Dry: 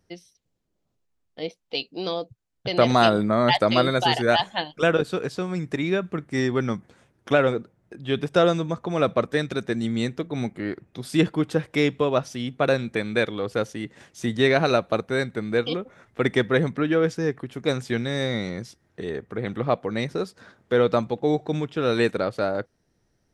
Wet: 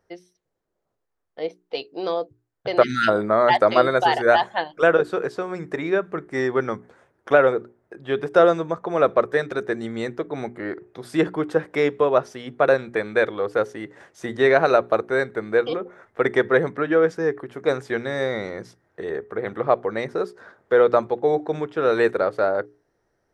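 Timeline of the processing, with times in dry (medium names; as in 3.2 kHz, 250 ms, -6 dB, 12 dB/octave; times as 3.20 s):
2.83–3.08 s: spectral selection erased 330–1300 Hz
whole clip: high-order bell 820 Hz +10.5 dB 2.8 oct; hum notches 60/120/180/240/300/360/420 Hz; trim -6 dB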